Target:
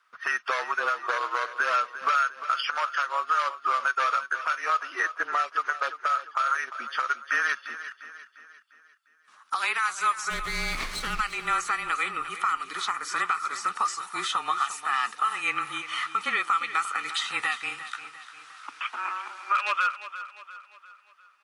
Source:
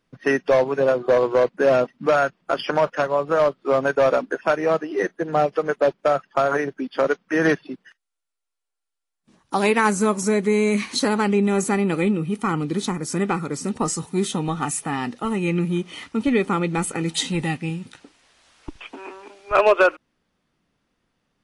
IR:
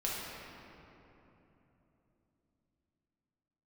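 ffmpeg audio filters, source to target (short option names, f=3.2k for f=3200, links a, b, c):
-filter_complex "[0:a]highpass=f=1.3k:t=q:w=6.2,acrossover=split=2400[a][b];[a]acompressor=threshold=-27dB:ratio=6[c];[c][b]amix=inputs=2:normalize=0,alimiter=limit=-17.5dB:level=0:latency=1:release=160,acrossover=split=5200[d][e];[e]acompressor=threshold=-46dB:ratio=4:attack=1:release=60[f];[d][f]amix=inputs=2:normalize=0,asplit=3[g][h][i];[g]afade=t=out:st=10.29:d=0.02[j];[h]aeval=exprs='max(val(0),0)':c=same,afade=t=in:st=10.29:d=0.02,afade=t=out:st=11.19:d=0.02[k];[i]afade=t=in:st=11.19:d=0.02[l];[j][k][l]amix=inputs=3:normalize=0,afreqshift=-27,asplit=2[m][n];[n]aecho=0:1:350|700|1050|1400|1750:0.224|0.105|0.0495|0.0232|0.0109[o];[m][o]amix=inputs=2:normalize=0,volume=2.5dB"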